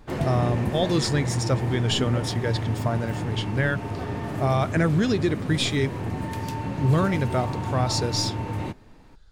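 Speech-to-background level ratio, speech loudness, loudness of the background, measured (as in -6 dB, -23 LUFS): 4.5 dB, -25.5 LUFS, -30.0 LUFS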